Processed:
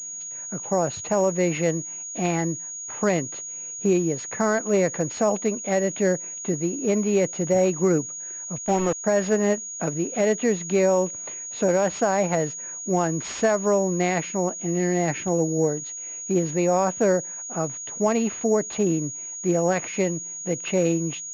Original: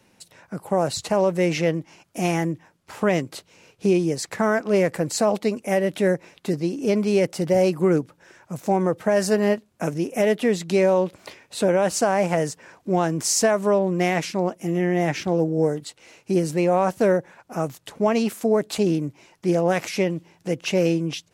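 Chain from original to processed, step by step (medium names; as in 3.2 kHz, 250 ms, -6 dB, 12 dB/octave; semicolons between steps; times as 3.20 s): 8.58–9.04 s: small samples zeroed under -25 dBFS; class-D stage that switches slowly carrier 6.7 kHz; trim -1.5 dB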